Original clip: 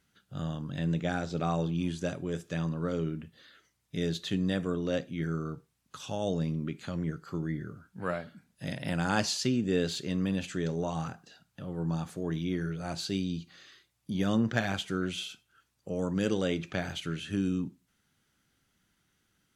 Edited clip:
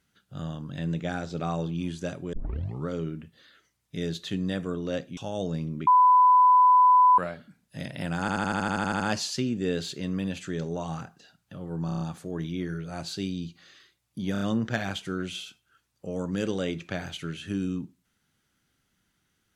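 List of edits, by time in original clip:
2.33 tape start 0.54 s
5.17–6.04 cut
6.74–8.05 bleep 1000 Hz -14 dBFS
9.07 stutter 0.08 s, 11 plays
11.93 stutter 0.03 s, 6 plays
14.24 stutter 0.03 s, 4 plays

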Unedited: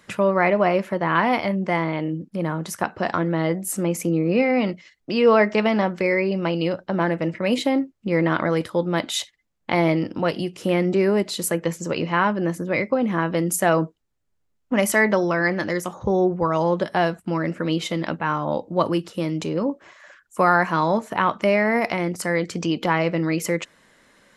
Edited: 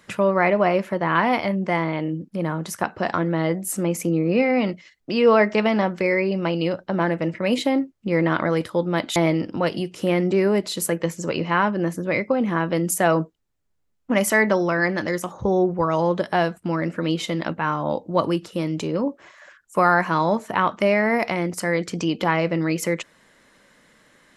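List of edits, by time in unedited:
9.16–9.78 cut

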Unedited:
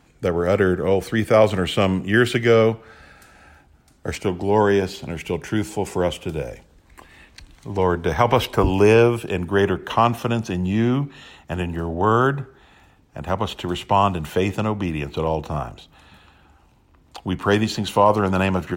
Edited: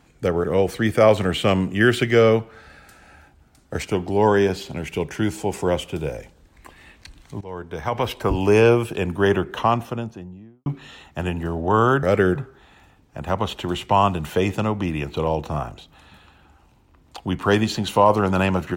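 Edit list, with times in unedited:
0.44–0.77 move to 12.36
7.74–9.11 fade in, from -19 dB
9.67–10.99 studio fade out

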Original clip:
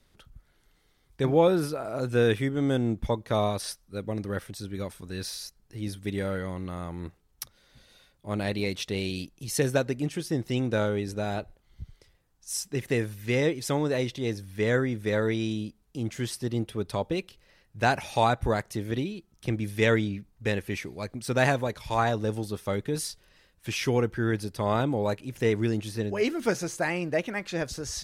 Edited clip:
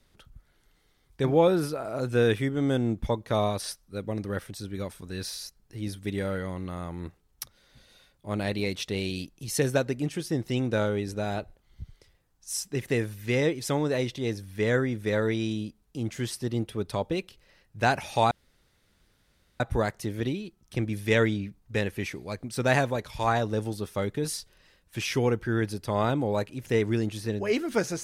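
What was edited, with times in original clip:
18.31 insert room tone 1.29 s

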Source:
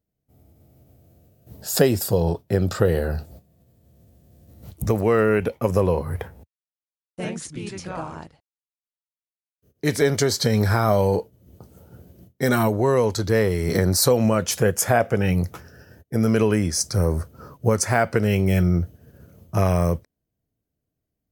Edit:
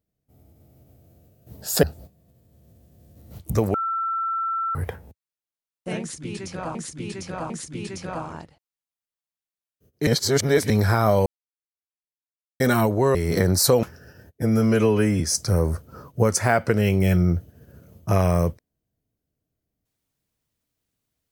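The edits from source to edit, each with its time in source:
1.83–3.15 cut
5.06–6.07 bleep 1340 Hz -22.5 dBFS
7.32–8.07 loop, 3 plays
9.89–10.52 reverse
11.08–12.42 mute
12.97–13.53 cut
14.21–15.55 cut
16.14–16.66 stretch 1.5×

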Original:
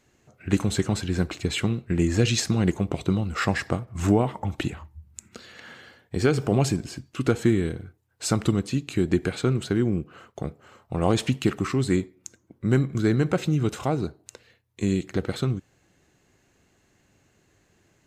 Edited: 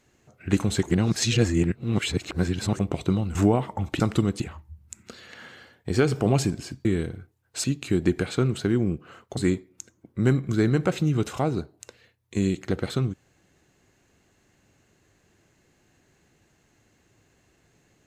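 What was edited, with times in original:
0.83–2.79 reverse
3.35–4.01 cut
7.11–7.51 cut
8.3–8.7 move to 4.66
10.43–11.83 cut

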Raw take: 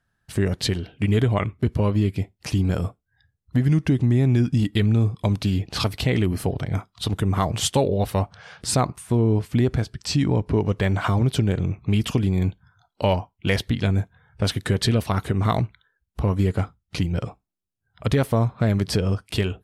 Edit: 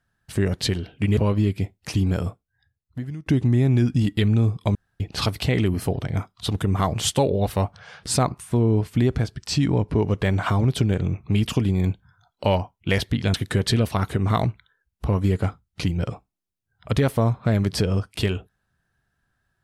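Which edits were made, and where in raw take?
1.17–1.75 cut
2.65–3.84 fade out, to -20 dB
5.33–5.58 room tone
13.92–14.49 cut

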